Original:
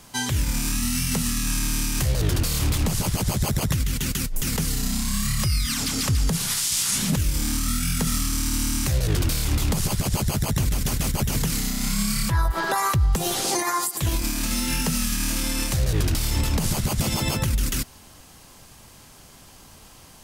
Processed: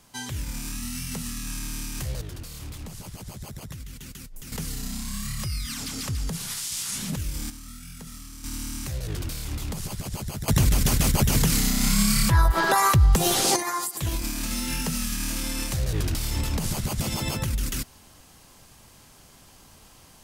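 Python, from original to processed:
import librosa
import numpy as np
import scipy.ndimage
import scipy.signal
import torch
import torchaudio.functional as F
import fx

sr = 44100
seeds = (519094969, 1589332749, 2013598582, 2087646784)

y = fx.gain(x, sr, db=fx.steps((0.0, -8.5), (2.21, -15.5), (4.52, -7.5), (7.5, -17.5), (8.44, -9.0), (10.48, 3.0), (13.56, -4.0)))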